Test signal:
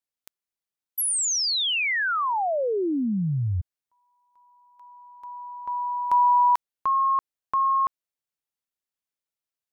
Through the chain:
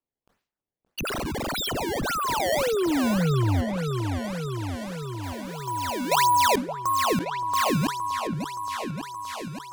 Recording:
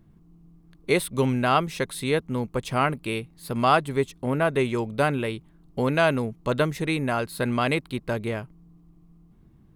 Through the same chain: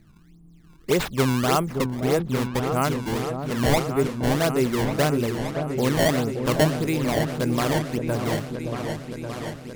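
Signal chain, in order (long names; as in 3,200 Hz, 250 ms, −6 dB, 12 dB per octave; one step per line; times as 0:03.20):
tilt shelving filter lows +3.5 dB
sample-and-hold swept by an LFO 20×, swing 160% 1.7 Hz
echo whose low-pass opens from repeat to repeat 572 ms, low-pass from 750 Hz, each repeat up 2 octaves, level −6 dB
level that may fall only so fast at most 130 dB per second
level −1.5 dB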